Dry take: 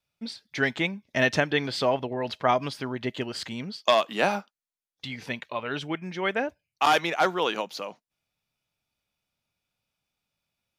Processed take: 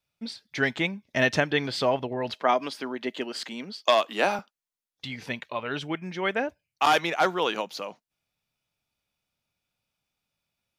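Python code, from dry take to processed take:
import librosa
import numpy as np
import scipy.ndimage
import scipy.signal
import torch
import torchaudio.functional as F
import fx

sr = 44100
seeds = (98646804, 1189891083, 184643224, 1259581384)

y = fx.highpass(x, sr, hz=220.0, slope=24, at=(2.34, 4.39))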